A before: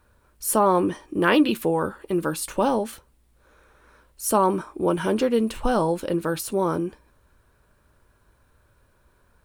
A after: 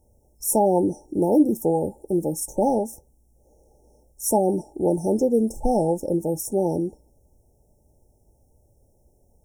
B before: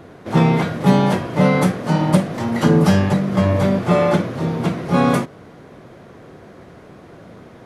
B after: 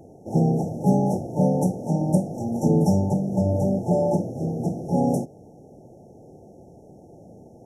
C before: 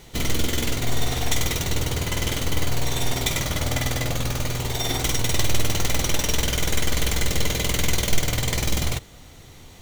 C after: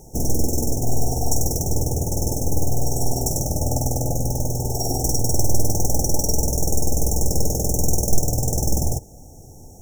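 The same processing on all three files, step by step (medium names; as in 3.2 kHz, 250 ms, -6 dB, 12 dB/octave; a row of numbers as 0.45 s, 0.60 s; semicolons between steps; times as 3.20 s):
FFT band-reject 900–5300 Hz; normalise loudness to -23 LUFS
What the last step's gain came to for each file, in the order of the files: +1.5 dB, -5.5 dB, +3.5 dB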